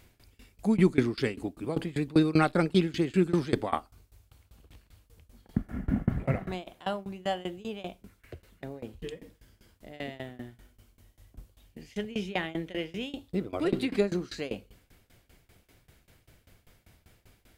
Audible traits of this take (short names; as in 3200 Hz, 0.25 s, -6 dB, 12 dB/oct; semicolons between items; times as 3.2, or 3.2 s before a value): tremolo saw down 5.1 Hz, depth 95%